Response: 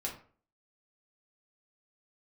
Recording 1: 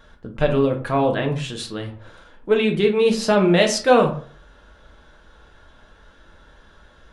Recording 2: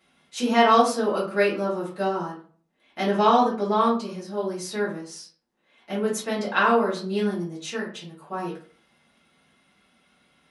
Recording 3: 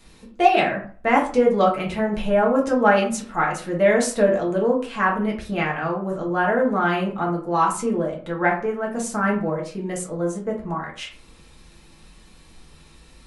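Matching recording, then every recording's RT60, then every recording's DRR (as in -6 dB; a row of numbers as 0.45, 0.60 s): 3; 0.45, 0.45, 0.45 s; 2.0, -8.5, -2.5 dB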